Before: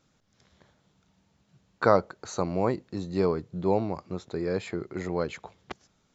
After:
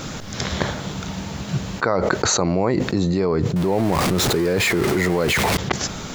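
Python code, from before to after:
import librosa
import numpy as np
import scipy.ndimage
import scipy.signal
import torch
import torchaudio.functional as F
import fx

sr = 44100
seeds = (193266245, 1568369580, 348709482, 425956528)

y = fx.zero_step(x, sr, step_db=-33.5, at=(3.56, 5.57))
y = fx.dynamic_eq(y, sr, hz=2000.0, q=4.6, threshold_db=-50.0, ratio=4.0, max_db=5)
y = fx.env_flatten(y, sr, amount_pct=100)
y = y * librosa.db_to_amplitude(-2.0)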